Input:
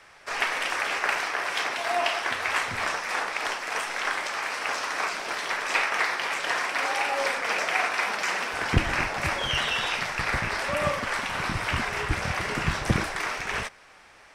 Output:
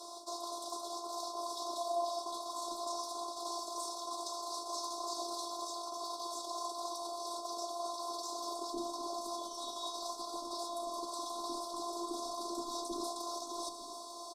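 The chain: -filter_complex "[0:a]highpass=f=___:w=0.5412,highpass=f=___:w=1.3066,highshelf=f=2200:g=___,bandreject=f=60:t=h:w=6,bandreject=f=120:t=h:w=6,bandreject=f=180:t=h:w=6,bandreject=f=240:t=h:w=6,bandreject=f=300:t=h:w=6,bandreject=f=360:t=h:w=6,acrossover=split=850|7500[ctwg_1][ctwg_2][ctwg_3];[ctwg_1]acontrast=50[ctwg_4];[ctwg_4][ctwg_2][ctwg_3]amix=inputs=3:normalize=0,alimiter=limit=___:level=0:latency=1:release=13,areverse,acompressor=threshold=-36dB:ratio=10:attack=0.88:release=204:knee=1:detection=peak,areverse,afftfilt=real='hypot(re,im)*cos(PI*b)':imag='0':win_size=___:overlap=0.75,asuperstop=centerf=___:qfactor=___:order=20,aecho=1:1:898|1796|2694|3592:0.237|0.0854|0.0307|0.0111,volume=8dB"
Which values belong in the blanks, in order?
210, 210, 7, -10dB, 512, 2100, 0.88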